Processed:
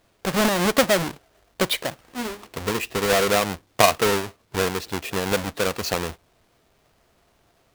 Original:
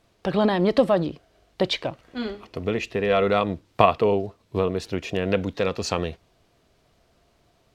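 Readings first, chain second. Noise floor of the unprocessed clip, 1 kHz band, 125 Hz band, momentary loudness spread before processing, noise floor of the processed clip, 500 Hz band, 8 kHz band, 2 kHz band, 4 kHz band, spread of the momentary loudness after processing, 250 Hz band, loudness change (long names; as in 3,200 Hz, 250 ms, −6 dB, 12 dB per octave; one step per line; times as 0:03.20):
−64 dBFS, +1.0 dB, −1.5 dB, 12 LU, −64 dBFS, −1.0 dB, +14.5 dB, +6.5 dB, +6.0 dB, 13 LU, −1.5 dB, +1.0 dB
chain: each half-wave held at its own peak
low-shelf EQ 410 Hz −7 dB
level −1 dB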